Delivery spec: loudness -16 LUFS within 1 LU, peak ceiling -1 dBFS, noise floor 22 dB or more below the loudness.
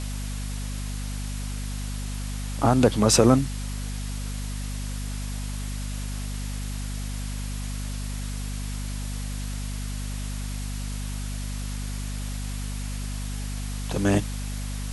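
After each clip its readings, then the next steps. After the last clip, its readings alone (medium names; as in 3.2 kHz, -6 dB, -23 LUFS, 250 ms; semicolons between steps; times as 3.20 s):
hum 50 Hz; highest harmonic 250 Hz; hum level -29 dBFS; noise floor -31 dBFS; noise floor target -51 dBFS; loudness -29.0 LUFS; peak level -3.5 dBFS; loudness target -16.0 LUFS
-> hum notches 50/100/150/200/250 Hz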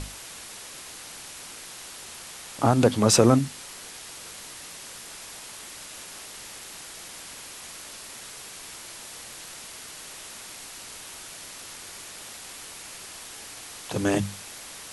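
hum not found; noise floor -42 dBFS; noise floor target -53 dBFS
-> noise reduction 11 dB, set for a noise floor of -42 dBFS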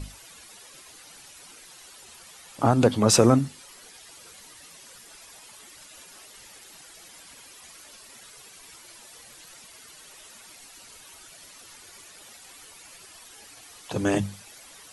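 noise floor -49 dBFS; loudness -22.5 LUFS; peak level -4.0 dBFS; loudness target -16.0 LUFS
-> trim +6.5 dB; peak limiter -1 dBFS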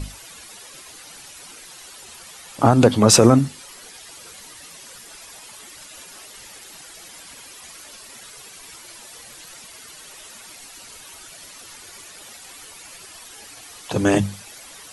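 loudness -16.5 LUFS; peak level -1.0 dBFS; noise floor -43 dBFS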